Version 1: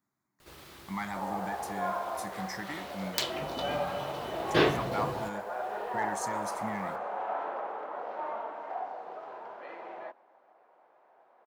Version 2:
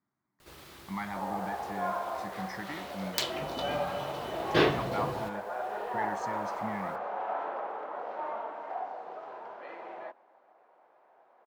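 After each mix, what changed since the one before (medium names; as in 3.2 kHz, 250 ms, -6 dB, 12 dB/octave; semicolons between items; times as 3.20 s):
speech: add distance through air 160 m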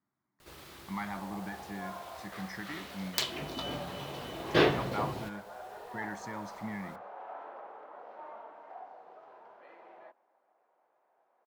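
speech: send off; first sound -10.5 dB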